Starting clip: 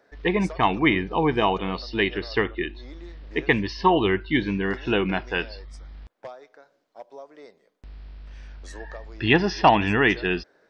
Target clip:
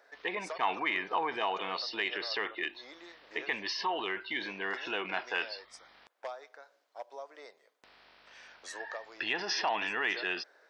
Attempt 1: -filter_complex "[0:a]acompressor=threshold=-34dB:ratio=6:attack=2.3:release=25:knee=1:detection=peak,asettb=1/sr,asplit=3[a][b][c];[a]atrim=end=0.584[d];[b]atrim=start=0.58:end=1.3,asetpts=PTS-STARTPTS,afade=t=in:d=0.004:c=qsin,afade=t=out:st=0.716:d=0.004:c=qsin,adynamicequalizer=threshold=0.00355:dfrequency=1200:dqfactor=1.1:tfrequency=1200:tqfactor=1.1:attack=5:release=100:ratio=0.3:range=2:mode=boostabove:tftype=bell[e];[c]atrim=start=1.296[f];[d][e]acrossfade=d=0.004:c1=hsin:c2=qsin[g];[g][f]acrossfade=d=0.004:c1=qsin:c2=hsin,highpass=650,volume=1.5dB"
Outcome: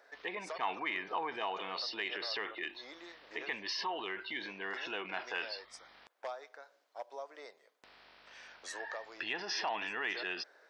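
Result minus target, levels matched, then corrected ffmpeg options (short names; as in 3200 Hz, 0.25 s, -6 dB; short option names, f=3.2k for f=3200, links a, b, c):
compressor: peak gain reduction +5 dB
-filter_complex "[0:a]acompressor=threshold=-28dB:ratio=6:attack=2.3:release=25:knee=1:detection=peak,asettb=1/sr,asplit=3[a][b][c];[a]atrim=end=0.584[d];[b]atrim=start=0.58:end=1.3,asetpts=PTS-STARTPTS,afade=t=in:d=0.004:c=qsin,afade=t=out:st=0.716:d=0.004:c=qsin,adynamicequalizer=threshold=0.00355:dfrequency=1200:dqfactor=1.1:tfrequency=1200:tqfactor=1.1:attack=5:release=100:ratio=0.3:range=2:mode=boostabove:tftype=bell[e];[c]atrim=start=1.296[f];[d][e]acrossfade=d=0.004:c1=hsin:c2=qsin[g];[g][f]acrossfade=d=0.004:c1=qsin:c2=hsin,highpass=650,volume=1.5dB"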